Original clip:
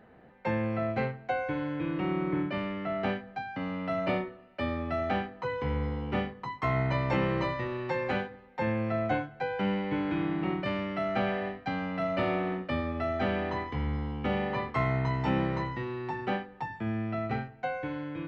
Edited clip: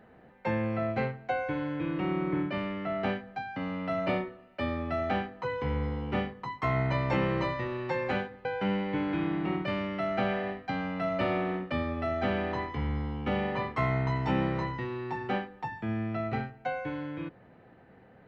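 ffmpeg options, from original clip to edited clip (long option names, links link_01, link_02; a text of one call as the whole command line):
ffmpeg -i in.wav -filter_complex "[0:a]asplit=2[link_01][link_02];[link_01]atrim=end=8.452[link_03];[link_02]atrim=start=9.428[link_04];[link_03][link_04]acrossfade=duration=0.004:curve1=hsin:curve2=hsin" out.wav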